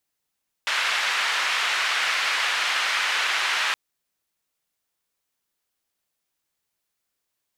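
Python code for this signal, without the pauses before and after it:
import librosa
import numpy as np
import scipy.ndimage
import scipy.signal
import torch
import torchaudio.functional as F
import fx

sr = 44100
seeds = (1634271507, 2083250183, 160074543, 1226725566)

y = fx.band_noise(sr, seeds[0], length_s=3.07, low_hz=1400.0, high_hz=2300.0, level_db=-24.0)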